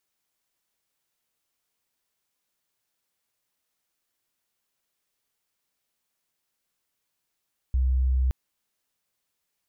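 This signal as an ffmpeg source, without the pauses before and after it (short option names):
-f lavfi -i "aevalsrc='0.106*sin(2*PI*64.2*t)':d=0.57:s=44100"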